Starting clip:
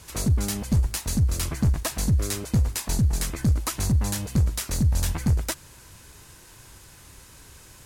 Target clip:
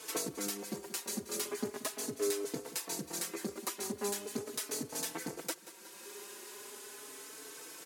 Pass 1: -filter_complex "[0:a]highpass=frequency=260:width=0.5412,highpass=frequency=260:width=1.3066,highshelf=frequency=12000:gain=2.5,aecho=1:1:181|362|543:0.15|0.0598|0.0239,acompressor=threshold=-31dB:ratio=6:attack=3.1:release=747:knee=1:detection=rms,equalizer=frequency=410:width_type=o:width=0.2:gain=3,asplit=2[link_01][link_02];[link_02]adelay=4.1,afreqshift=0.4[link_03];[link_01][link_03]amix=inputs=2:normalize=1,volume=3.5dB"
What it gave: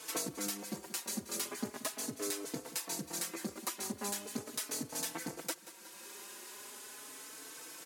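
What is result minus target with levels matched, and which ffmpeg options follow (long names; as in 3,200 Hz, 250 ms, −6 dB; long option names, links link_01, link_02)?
500 Hz band −5.0 dB
-filter_complex "[0:a]highpass=frequency=260:width=0.5412,highpass=frequency=260:width=1.3066,highshelf=frequency=12000:gain=2.5,aecho=1:1:181|362|543:0.15|0.0598|0.0239,acompressor=threshold=-31dB:ratio=6:attack=3.1:release=747:knee=1:detection=rms,equalizer=frequency=410:width_type=o:width=0.2:gain=13,asplit=2[link_01][link_02];[link_02]adelay=4.1,afreqshift=0.4[link_03];[link_01][link_03]amix=inputs=2:normalize=1,volume=3.5dB"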